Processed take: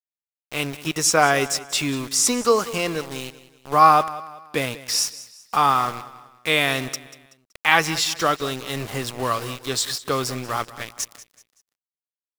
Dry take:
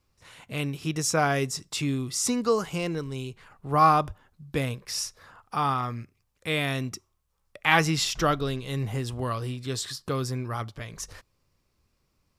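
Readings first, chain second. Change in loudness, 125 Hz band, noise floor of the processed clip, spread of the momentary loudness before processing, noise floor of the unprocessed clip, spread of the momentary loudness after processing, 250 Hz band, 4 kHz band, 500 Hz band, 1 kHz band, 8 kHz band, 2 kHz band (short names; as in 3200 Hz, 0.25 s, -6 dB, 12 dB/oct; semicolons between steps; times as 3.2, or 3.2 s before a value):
+6.0 dB, -3.0 dB, under -85 dBFS, 15 LU, -74 dBFS, 14 LU, +1.5 dB, +7.5 dB, +5.5 dB, +6.5 dB, +8.5 dB, +6.5 dB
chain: AGC gain up to 8.5 dB; HPF 470 Hz 6 dB/oct; sample gate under -31 dBFS; on a send: feedback echo 0.189 s, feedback 39%, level -17 dB; on the sum: gain +1 dB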